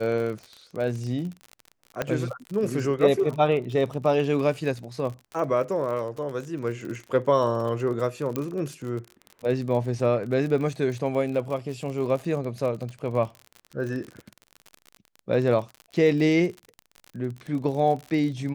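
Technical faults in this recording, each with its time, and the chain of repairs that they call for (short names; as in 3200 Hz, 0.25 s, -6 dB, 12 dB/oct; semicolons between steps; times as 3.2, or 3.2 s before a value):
crackle 44/s -32 dBFS
2.02 pop -12 dBFS
8.36 pop -14 dBFS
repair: de-click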